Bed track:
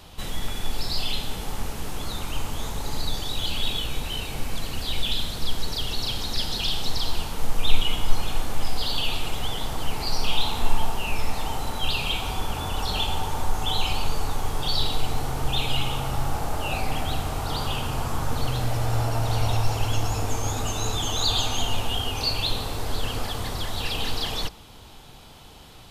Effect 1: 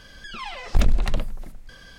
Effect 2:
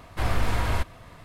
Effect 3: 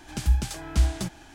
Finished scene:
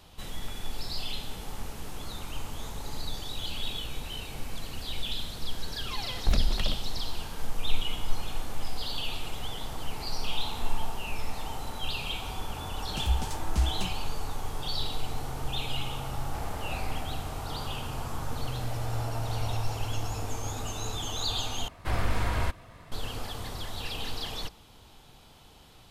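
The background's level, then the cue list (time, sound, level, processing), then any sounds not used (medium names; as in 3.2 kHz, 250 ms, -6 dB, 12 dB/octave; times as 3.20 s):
bed track -7.5 dB
5.52 s: add 1 -6 dB
12.80 s: add 3 -5.5 dB
16.16 s: add 2 -16 dB
21.68 s: replace with 2 -3 dB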